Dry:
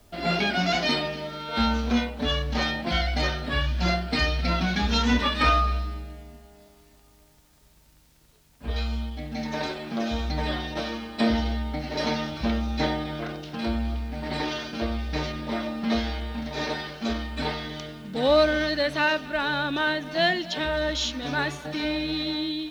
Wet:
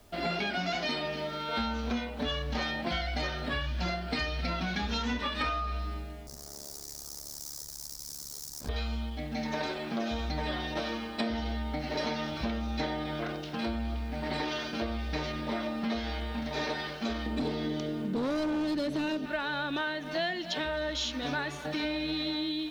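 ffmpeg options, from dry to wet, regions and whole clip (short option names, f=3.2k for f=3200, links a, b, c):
-filter_complex "[0:a]asettb=1/sr,asplit=3[a][b][c];[a]atrim=end=6.274[d];[b]atrim=start=6.27:end=8.69,asetpts=PTS-STARTPTS,afade=t=in:d=0.004:c=qsin,afade=t=out:st=2.416:d=0.004:c=qsin,aeval=exprs='val(0)+0.5*0.00668*sgn(val(0))':c=same,tremolo=f=72:d=0.947,highshelf=f=3.9k:t=q:w=3:g=12.5[e];[c]atrim=start=8.686[f];[d][e]acrossfade=d=0.004:c1=hsin:c2=qsin[g];[g][f]acrossfade=d=0.004:c1=qsin:c2=hsin,asettb=1/sr,asplit=3[h][i][j];[h]atrim=end=17.264[k];[i]atrim=start=17.26:end=19.26,asetpts=PTS-STARTPTS,afade=t=in:d=0.004:c=qsin,afade=t=out:st=1.996:d=0.004:c=qsin,equalizer=f=330:t=o:w=2.4:g=13,acrossover=split=400|3000[l][m][n];[m]acompressor=threshold=-39dB:ratio=2:attack=3.2:release=140:knee=2.83:detection=peak[o];[l][o][n]amix=inputs=3:normalize=0,volume=19dB,asoftclip=hard,volume=-19dB[p];[j]atrim=start=19.256[q];[k][p]acrossfade=d=0.004:c1=hsin:c2=qsin[r];[r][q]acrossfade=d=0.004:c1=qsin:c2=hsin,bass=f=250:g=-3,treble=f=4k:g=-2,acompressor=threshold=-29dB:ratio=6"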